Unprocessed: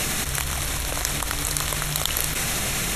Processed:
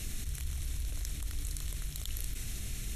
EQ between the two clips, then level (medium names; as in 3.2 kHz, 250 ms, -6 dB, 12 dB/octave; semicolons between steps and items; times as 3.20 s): amplifier tone stack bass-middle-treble 10-0-1; peaking EQ 160 Hz -10.5 dB 0.31 oct; band-stop 540 Hz, Q 12; +2.5 dB